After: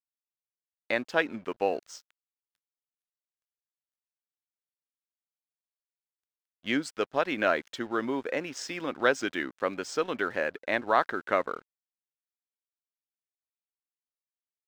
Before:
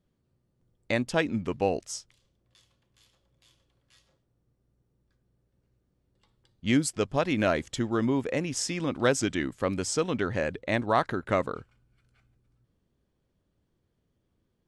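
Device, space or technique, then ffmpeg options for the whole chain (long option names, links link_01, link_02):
pocket radio on a weak battery: -af "highpass=340,lowpass=4500,aeval=exprs='sgn(val(0))*max(abs(val(0))-0.00211,0)':channel_layout=same,equalizer=frequency=1500:width_type=o:width=0.51:gain=5"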